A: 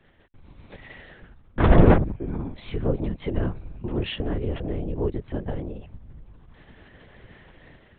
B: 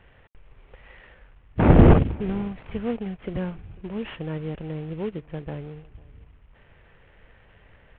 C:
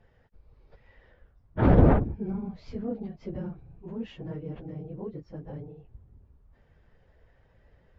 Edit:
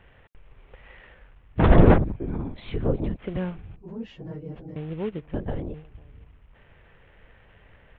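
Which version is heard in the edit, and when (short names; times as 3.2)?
B
1.63–3.17 from A
3.76–4.76 from C
5.34–5.74 from A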